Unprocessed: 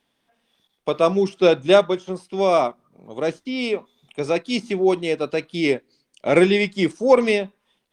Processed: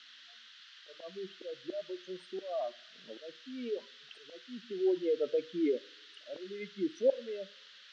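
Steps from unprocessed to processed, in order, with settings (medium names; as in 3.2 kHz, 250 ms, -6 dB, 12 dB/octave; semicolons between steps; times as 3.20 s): spectral contrast enhancement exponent 2.5; slow attack 751 ms; band noise 1.4–4.9 kHz -52 dBFS; cabinet simulation 380–6800 Hz, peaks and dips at 400 Hz -6 dB, 810 Hz -6 dB, 2.3 kHz -9 dB, 3.2 kHz +4 dB, 4.9 kHz -6 dB; two-slope reverb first 0.39 s, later 1.6 s, from -21 dB, DRR 16.5 dB; trim -2.5 dB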